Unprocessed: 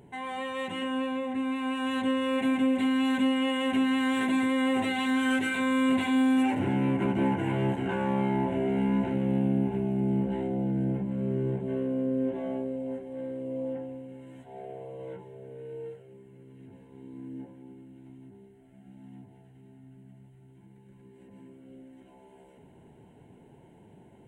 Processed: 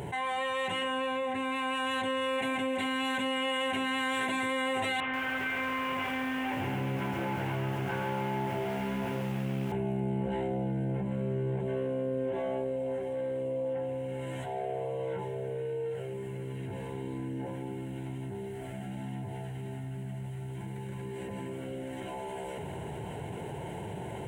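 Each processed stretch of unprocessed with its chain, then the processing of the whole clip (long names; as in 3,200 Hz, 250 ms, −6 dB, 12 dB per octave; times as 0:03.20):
0:05.00–0:09.72: variable-slope delta modulation 16 kbit/s + tuned comb filter 140 Hz, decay 0.48 s + feedback echo at a low word length 135 ms, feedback 55%, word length 9 bits, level −6 dB
whole clip: high-pass filter 63 Hz; parametric band 250 Hz −12.5 dB 0.89 octaves; envelope flattener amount 70%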